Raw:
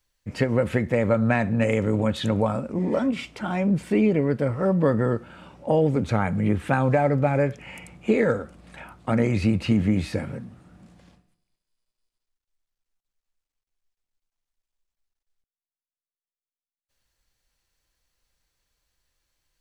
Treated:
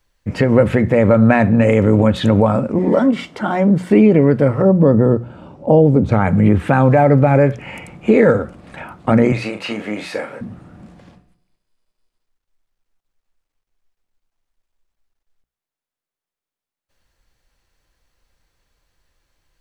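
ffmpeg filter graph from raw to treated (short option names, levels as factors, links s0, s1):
-filter_complex "[0:a]asettb=1/sr,asplit=3[s0][s1][s2];[s0]atrim=end=2.884[s3];[s1]atrim=start=2.88:end=3.9,asetpts=PTS-STARTPTS,afade=t=in:d=0.004:c=qsin,afade=t=out:st=1.016:d=0.004:c=qsin,highpass=f=180:p=1,bandreject=f=2500:w=5.1[s4];[s2]atrim=start=3.896[s5];[s3][s4]acrossfade=d=0.004:c1=hsin:c2=qsin[s6];[s6][s5]acrossfade=d=0.004:c1=qsin:c2=hsin,asettb=1/sr,asplit=3[s7][s8][s9];[s7]atrim=end=4.624[s10];[s8]atrim=start=4.62:end=6.12,asetpts=PTS-STARTPTS,afade=t=in:d=0.004:c=qsin,afade=t=out:st=1.496:d=0.004:c=qsin,lowpass=f=3700:p=1,equalizer=f=1900:t=o:w=1.7:g=-11.5[s11];[s9]atrim=start=6.116[s12];[s10][s11]acrossfade=d=0.004:c1=hsin:c2=qsin[s13];[s13][s12]acrossfade=d=0.004:c1=qsin:c2=hsin,asettb=1/sr,asplit=3[s14][s15][s16];[s14]atrim=end=9.324[s17];[s15]atrim=start=9.32:end=10.41,asetpts=PTS-STARTPTS,afade=t=in:d=0.004:c=qsin,afade=t=out:st=1.086:d=0.004:c=qsin,highpass=620,asplit=2[s18][s19];[s19]adelay=38,volume=0.473[s20];[s18][s20]amix=inputs=2:normalize=0,atrim=end_sample=48069[s21];[s16]atrim=start=10.406[s22];[s17][s21]acrossfade=d=0.004:c1=hsin:c2=qsin[s23];[s23][s22]acrossfade=d=0.004:c1=qsin:c2=hsin,highshelf=f=2800:g=-9.5,bandreject=f=60:t=h:w=6,bandreject=f=120:t=h:w=6,bandreject=f=180:t=h:w=6,alimiter=level_in=4.22:limit=0.891:release=50:level=0:latency=1,volume=0.891"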